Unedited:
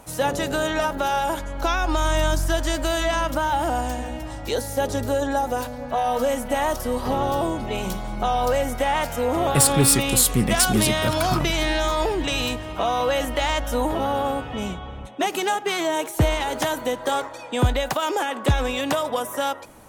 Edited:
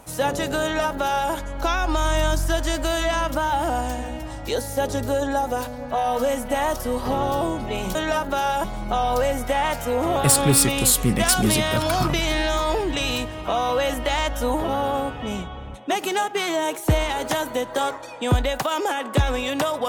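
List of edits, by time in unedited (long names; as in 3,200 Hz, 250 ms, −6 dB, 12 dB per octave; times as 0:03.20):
0:00.63–0:01.32: duplicate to 0:07.95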